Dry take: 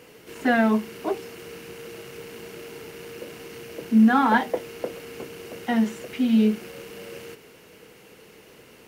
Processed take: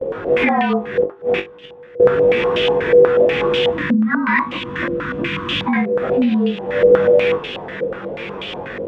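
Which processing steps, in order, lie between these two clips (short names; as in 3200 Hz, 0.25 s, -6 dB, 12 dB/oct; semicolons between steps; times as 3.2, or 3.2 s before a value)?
inharmonic rescaling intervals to 108%; gate with hold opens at -45 dBFS; compressor 8:1, threshold -35 dBFS, peak gain reduction 21.5 dB; 0.88–2 flipped gate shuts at -35 dBFS, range -25 dB; 3.7–5.75 spectral gain 350–930 Hz -18 dB; on a send: flutter echo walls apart 3.5 m, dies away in 0.2 s; on the sum: maximiser +31 dB; stepped low-pass 8.2 Hz 510–3000 Hz; gain -9 dB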